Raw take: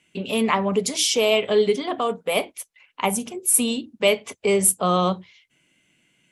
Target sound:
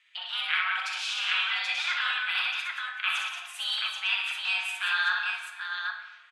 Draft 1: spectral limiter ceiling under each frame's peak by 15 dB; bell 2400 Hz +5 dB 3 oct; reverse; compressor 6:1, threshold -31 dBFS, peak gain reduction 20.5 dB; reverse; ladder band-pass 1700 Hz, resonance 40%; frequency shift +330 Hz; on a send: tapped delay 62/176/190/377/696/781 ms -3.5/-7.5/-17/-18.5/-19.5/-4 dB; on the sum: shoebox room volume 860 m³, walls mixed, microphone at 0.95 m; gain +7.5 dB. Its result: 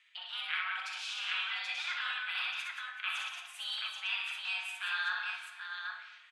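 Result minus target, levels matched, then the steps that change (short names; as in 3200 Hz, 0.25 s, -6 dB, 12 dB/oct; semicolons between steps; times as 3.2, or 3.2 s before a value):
compressor: peak gain reduction +8 dB
change: compressor 6:1, threshold -21.5 dBFS, peak gain reduction 12.5 dB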